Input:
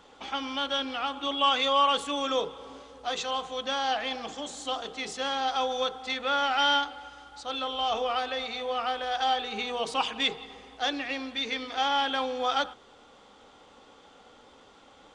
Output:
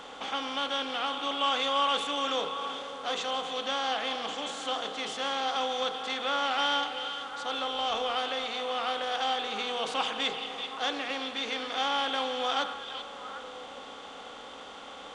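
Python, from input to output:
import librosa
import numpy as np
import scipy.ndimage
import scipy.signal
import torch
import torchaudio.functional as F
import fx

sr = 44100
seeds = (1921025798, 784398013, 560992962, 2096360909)

y = fx.bin_compress(x, sr, power=0.6)
y = fx.hum_notches(y, sr, base_hz=60, count=2)
y = fx.echo_stepped(y, sr, ms=384, hz=3300.0, octaves=-1.4, feedback_pct=70, wet_db=-6.5)
y = y * librosa.db_to_amplitude(-6.0)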